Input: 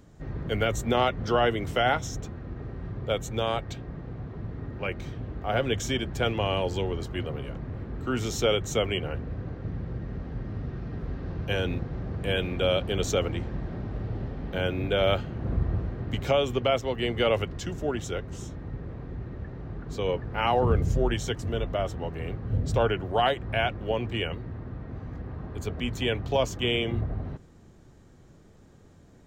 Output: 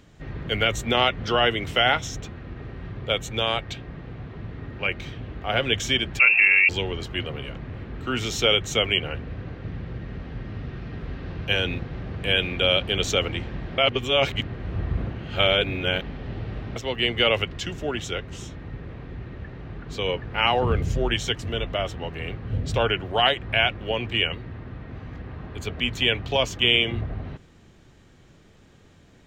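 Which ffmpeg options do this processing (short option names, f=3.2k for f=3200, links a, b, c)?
-filter_complex "[0:a]asettb=1/sr,asplit=3[a][b][c];[a]atrim=end=6.194[d];[b]atrim=start=6.19:end=6.69,asetpts=PTS-STARTPTS,afade=t=in:d=0.004:c=qsin,afade=t=out:st=0.496:d=0.004:c=qsin,lowpass=f=2.4k:t=q:w=0.5098,lowpass=f=2.4k:t=q:w=0.6013,lowpass=f=2.4k:t=q:w=0.9,lowpass=f=2.4k:t=q:w=2.563,afreqshift=-2800[e];[c]atrim=start=6.686[f];[d][e]acrossfade=d=0.004:c1=hsin:c2=qsin[g];[g][f]acrossfade=d=0.004:c1=qsin:c2=hsin,asplit=3[h][i][j];[h]atrim=end=13.782[k];[i]atrim=start=13.778:end=16.762,asetpts=PTS-STARTPTS,areverse[l];[j]atrim=start=16.758[m];[k][l]acrossfade=d=0.004:c1=hsin:c2=hsin[n];[n][m]acrossfade=d=0.004:c1=hsin:c2=hsin,equalizer=f=2.8k:t=o:w=1.6:g=11"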